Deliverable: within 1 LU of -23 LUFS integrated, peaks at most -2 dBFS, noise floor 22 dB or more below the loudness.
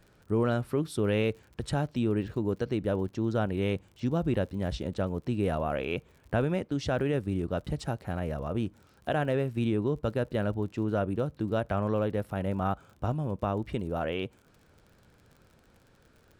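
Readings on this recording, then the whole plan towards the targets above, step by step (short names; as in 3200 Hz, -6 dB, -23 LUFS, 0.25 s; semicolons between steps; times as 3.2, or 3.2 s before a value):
ticks 47/s; loudness -31.0 LUFS; peak -17.5 dBFS; loudness target -23.0 LUFS
-> de-click; gain +8 dB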